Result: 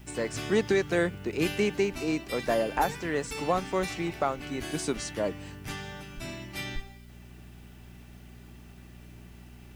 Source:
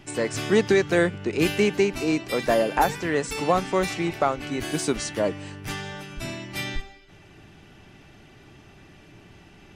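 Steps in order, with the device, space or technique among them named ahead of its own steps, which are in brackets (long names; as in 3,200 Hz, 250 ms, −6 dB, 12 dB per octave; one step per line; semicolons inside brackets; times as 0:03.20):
video cassette with head-switching buzz (hum with harmonics 60 Hz, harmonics 4, −44 dBFS −4 dB per octave; white noise bed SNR 34 dB)
level −5.5 dB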